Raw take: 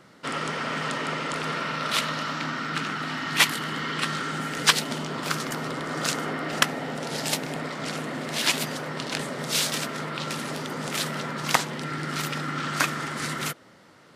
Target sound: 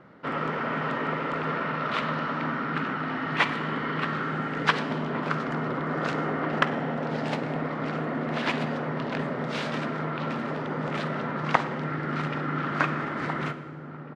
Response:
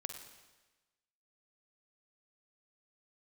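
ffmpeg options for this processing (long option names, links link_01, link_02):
-filter_complex "[0:a]lowpass=1700,asplit=2[link_01][link_02];[link_02]adelay=1749,volume=-9dB,highshelf=frequency=4000:gain=-39.4[link_03];[link_01][link_03]amix=inputs=2:normalize=0,asplit=2[link_04][link_05];[1:a]atrim=start_sample=2205[link_06];[link_05][link_06]afir=irnorm=-1:irlink=0,volume=3dB[link_07];[link_04][link_07]amix=inputs=2:normalize=0,volume=-4.5dB"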